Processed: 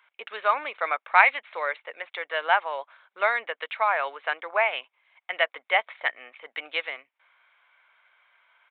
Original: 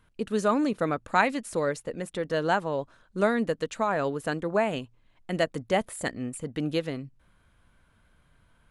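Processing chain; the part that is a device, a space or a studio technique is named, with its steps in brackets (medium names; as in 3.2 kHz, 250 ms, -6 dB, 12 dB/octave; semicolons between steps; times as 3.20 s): musical greeting card (resampled via 8 kHz; high-pass 740 Hz 24 dB/octave; peaking EQ 2.2 kHz +12 dB 0.2 oct); trim +5.5 dB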